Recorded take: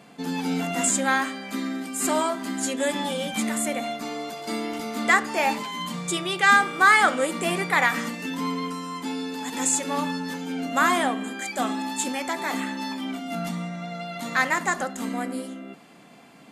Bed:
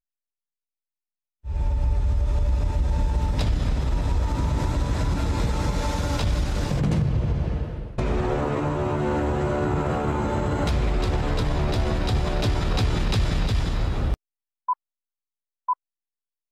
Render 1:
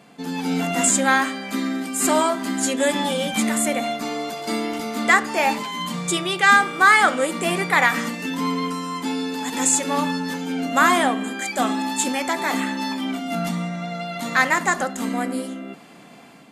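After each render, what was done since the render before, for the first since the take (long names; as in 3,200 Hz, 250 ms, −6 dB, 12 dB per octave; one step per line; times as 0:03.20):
automatic gain control gain up to 5 dB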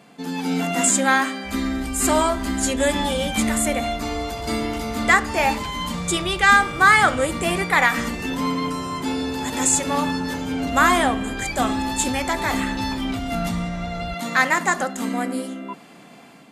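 mix in bed −11.5 dB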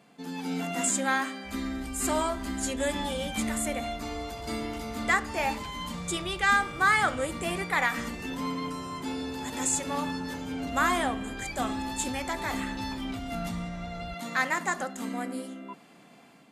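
level −9 dB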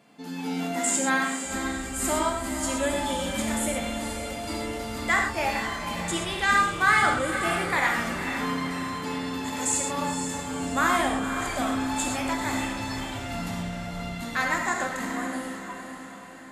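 on a send: feedback delay with all-pass diffusion 504 ms, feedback 53%, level −8.5 dB
on the sum: reverb whose tail is shaped and stops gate 150 ms flat, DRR 1 dB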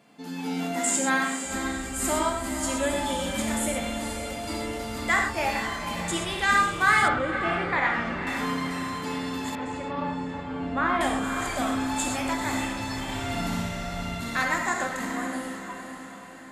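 0:07.08–0:08.27: low-pass filter 2,900 Hz
0:09.55–0:11.01: high-frequency loss of the air 370 metres
0:13.02–0:14.43: flutter between parallel walls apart 10.5 metres, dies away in 1.2 s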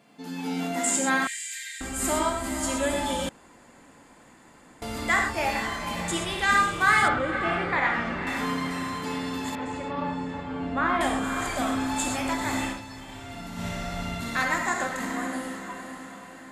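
0:01.27–0:01.81: Butterworth high-pass 1,700 Hz 96 dB per octave
0:03.29–0:04.82: fill with room tone
0:12.69–0:13.68: duck −9.5 dB, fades 0.13 s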